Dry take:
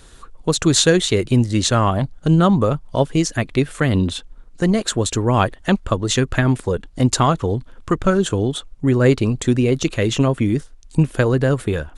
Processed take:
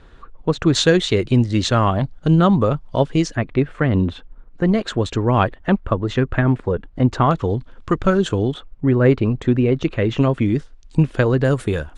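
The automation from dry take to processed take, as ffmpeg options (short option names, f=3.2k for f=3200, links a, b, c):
-af "asetnsamples=n=441:p=0,asendcmd='0.75 lowpass f 4600;3.35 lowpass f 2000;4.66 lowpass f 3200;5.58 lowpass f 2000;7.31 lowpass f 5000;8.54 lowpass f 2300;10.18 lowpass f 4500;11.45 lowpass f 9500',lowpass=2.3k"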